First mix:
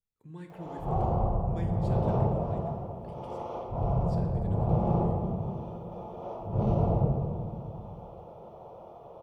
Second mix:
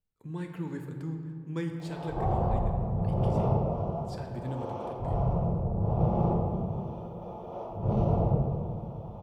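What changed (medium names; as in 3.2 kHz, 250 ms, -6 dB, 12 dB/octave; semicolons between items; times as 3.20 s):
speech +7.5 dB; background: entry +1.30 s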